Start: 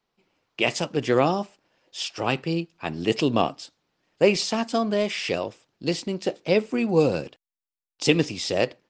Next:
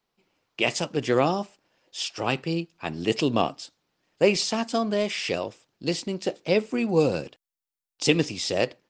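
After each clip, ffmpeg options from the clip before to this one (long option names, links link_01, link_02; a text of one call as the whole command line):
ffmpeg -i in.wav -af "highshelf=frequency=6700:gain=5.5,volume=-1.5dB" out.wav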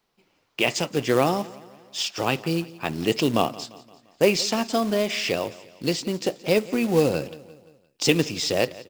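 ffmpeg -i in.wav -filter_complex "[0:a]asplit=2[link_01][link_02];[link_02]acompressor=threshold=-31dB:ratio=16,volume=-2dB[link_03];[link_01][link_03]amix=inputs=2:normalize=0,acrusher=bits=4:mode=log:mix=0:aa=0.000001,aecho=1:1:173|346|519|692:0.106|0.054|0.0276|0.0141" out.wav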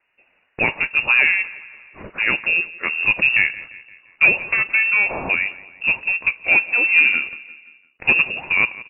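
ffmpeg -i in.wav -af "asoftclip=type=tanh:threshold=-9.5dB,lowpass=frequency=2500:width_type=q:width=0.5098,lowpass=frequency=2500:width_type=q:width=0.6013,lowpass=frequency=2500:width_type=q:width=0.9,lowpass=frequency=2500:width_type=q:width=2.563,afreqshift=-2900,volume=6dB" out.wav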